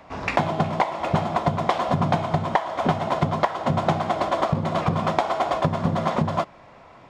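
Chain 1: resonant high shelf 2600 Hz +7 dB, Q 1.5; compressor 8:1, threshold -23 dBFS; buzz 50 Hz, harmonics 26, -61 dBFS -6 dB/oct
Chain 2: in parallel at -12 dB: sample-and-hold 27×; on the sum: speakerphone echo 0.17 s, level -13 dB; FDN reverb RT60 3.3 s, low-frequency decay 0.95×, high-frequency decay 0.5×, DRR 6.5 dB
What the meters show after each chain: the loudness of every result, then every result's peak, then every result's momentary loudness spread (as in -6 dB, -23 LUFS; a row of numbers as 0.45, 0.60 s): -28.5, -21.5 LUFS; -7.5, -4.5 dBFS; 2, 2 LU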